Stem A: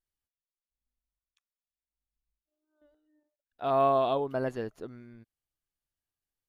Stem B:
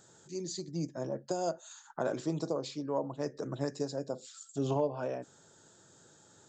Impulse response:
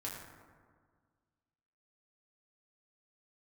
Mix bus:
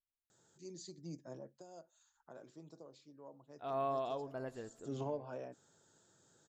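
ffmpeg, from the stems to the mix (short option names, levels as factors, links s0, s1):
-filter_complex "[0:a]volume=0.224,asplit=2[s0][s1];[s1]volume=0.133[s2];[1:a]adelay=300,volume=1.06,afade=t=out:st=1.32:d=0.27:silence=0.316228,afade=t=in:st=4.4:d=0.53:silence=0.251189[s3];[2:a]atrim=start_sample=2205[s4];[s2][s4]afir=irnorm=-1:irlink=0[s5];[s0][s3][s5]amix=inputs=3:normalize=0"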